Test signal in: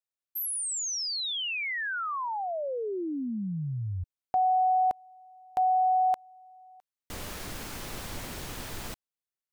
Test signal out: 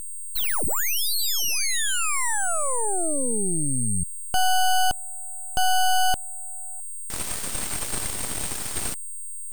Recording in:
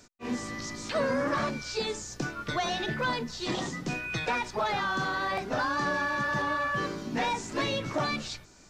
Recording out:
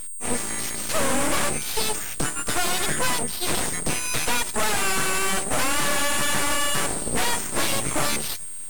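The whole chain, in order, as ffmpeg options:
ffmpeg -i in.wav -af "aeval=exprs='val(0)+0.0178*sin(2*PI*8600*n/s)':channel_layout=same,aeval=exprs='0.15*(cos(1*acos(clip(val(0)/0.15,-1,1)))-cos(1*PI/2))+0.0422*(cos(4*acos(clip(val(0)/0.15,-1,1)))-cos(4*PI/2))+0.0531*(cos(8*acos(clip(val(0)/0.15,-1,1)))-cos(8*PI/2))':channel_layout=same" out.wav

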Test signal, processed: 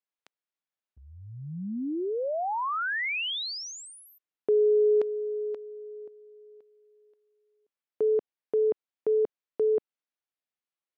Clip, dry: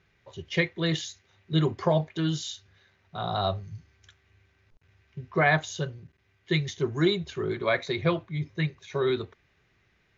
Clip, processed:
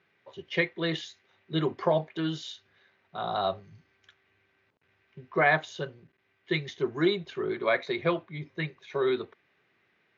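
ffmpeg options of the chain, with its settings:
ffmpeg -i in.wav -af "highpass=230,lowpass=3600" out.wav

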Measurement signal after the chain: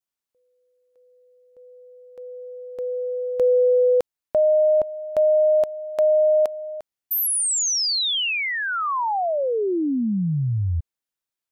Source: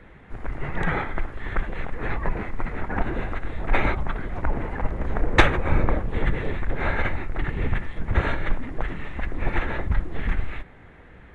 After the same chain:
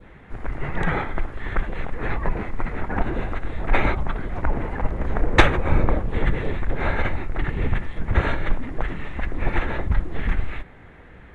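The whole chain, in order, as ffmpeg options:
ffmpeg -i in.wav -af "adynamicequalizer=threshold=0.01:dfrequency=1800:dqfactor=1.3:tfrequency=1800:tqfactor=1.3:attack=5:release=100:ratio=0.375:range=2:mode=cutabove:tftype=bell,volume=2dB" out.wav

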